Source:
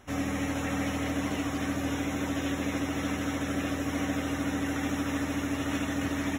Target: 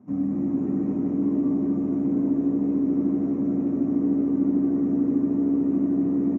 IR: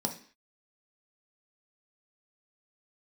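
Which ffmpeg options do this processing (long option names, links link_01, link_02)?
-filter_complex "[0:a]asplit=2[link_01][link_02];[link_02]alimiter=level_in=5dB:limit=-24dB:level=0:latency=1,volume=-5dB,volume=1dB[link_03];[link_01][link_03]amix=inputs=2:normalize=0,bandpass=frequency=170:width_type=q:width=1.6:csg=0,asplit=9[link_04][link_05][link_06][link_07][link_08][link_09][link_10][link_11][link_12];[link_05]adelay=234,afreqshift=66,volume=-6dB[link_13];[link_06]adelay=468,afreqshift=132,volume=-10.4dB[link_14];[link_07]adelay=702,afreqshift=198,volume=-14.9dB[link_15];[link_08]adelay=936,afreqshift=264,volume=-19.3dB[link_16];[link_09]adelay=1170,afreqshift=330,volume=-23.7dB[link_17];[link_10]adelay=1404,afreqshift=396,volume=-28.2dB[link_18];[link_11]adelay=1638,afreqshift=462,volume=-32.6dB[link_19];[link_12]adelay=1872,afreqshift=528,volume=-37.1dB[link_20];[link_04][link_13][link_14][link_15][link_16][link_17][link_18][link_19][link_20]amix=inputs=9:normalize=0[link_21];[1:a]atrim=start_sample=2205,asetrate=52920,aresample=44100[link_22];[link_21][link_22]afir=irnorm=-1:irlink=0,volume=-4dB"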